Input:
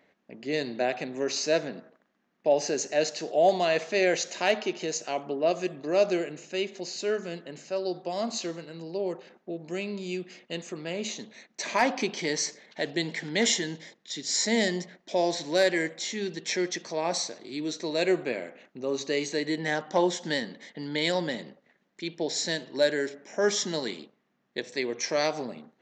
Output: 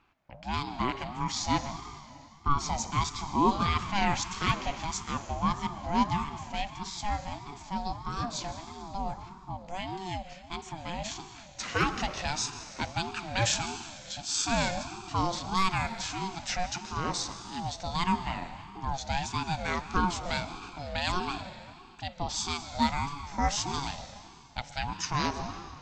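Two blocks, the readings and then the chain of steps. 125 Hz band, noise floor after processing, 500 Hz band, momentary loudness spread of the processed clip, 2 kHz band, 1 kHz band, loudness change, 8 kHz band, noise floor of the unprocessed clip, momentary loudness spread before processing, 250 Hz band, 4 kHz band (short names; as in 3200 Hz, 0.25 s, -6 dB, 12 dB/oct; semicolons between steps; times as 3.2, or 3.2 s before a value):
+6.5 dB, -50 dBFS, -13.0 dB, 13 LU, -3.5 dB, +4.5 dB, -3.0 dB, -2.5 dB, -73 dBFS, 13 LU, -2.5 dB, -2.5 dB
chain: plate-style reverb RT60 2.5 s, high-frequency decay 0.95×, pre-delay 0.115 s, DRR 11 dB; ring modulator with a swept carrier 460 Hz, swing 25%, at 1.6 Hz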